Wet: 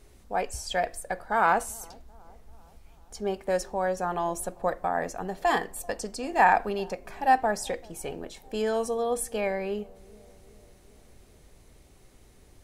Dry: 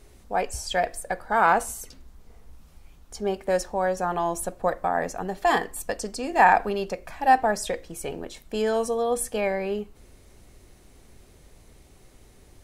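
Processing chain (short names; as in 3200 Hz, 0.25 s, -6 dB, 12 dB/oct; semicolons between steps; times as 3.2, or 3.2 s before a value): dark delay 0.389 s, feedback 59%, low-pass 720 Hz, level -23 dB; gain -3 dB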